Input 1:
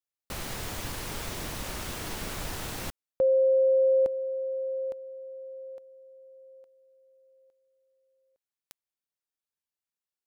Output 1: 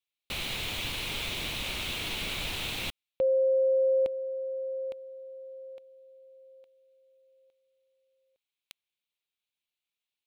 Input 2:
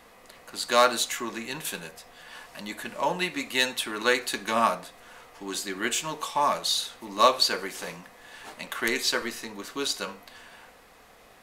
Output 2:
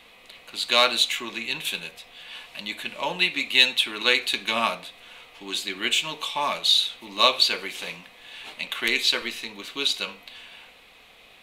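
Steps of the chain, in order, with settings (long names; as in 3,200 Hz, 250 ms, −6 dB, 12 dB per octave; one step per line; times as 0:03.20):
flat-topped bell 3,000 Hz +12.5 dB 1.1 octaves
level −2.5 dB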